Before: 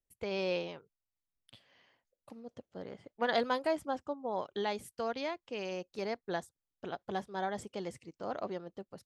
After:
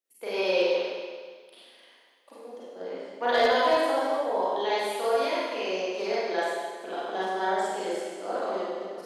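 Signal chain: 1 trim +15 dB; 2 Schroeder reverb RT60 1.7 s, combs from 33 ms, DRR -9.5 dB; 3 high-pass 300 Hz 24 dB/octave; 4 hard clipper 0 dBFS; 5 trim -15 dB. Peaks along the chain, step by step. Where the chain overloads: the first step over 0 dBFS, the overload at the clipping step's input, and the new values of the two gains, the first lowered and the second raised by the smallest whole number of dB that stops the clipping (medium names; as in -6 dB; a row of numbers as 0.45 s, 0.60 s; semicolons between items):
-3.0 dBFS, +4.0 dBFS, +4.0 dBFS, 0.0 dBFS, -15.0 dBFS; step 2, 4.0 dB; step 1 +11 dB, step 5 -11 dB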